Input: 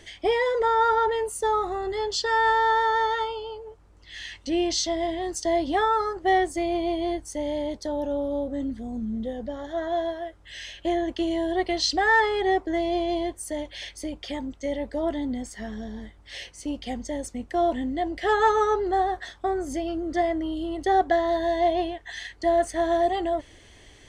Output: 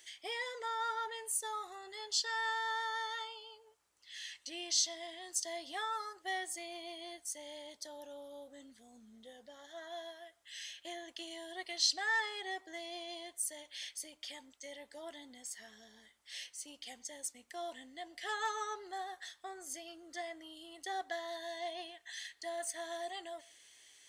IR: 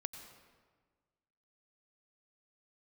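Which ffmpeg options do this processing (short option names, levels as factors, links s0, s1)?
-filter_complex "[0:a]aderivative,asplit=2[s0][s1];[1:a]atrim=start_sample=2205,atrim=end_sample=6615,lowpass=4100[s2];[s1][s2]afir=irnorm=-1:irlink=0,volume=0.299[s3];[s0][s3]amix=inputs=2:normalize=0,volume=0.891"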